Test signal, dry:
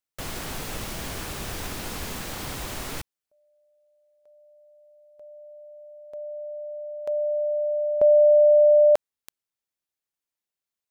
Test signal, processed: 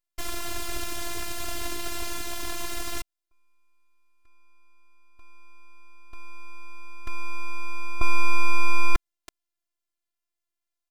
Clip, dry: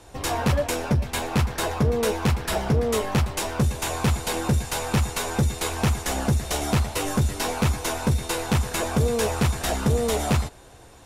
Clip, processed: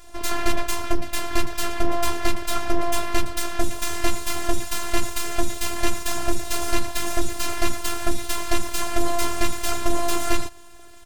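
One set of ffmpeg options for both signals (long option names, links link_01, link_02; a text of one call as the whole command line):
ffmpeg -i in.wav -af "aresample=32000,aresample=44100,aeval=exprs='abs(val(0))':channel_layout=same,afftfilt=real='hypot(re,im)*cos(PI*b)':imag='0':win_size=512:overlap=0.75,volume=6.5dB" out.wav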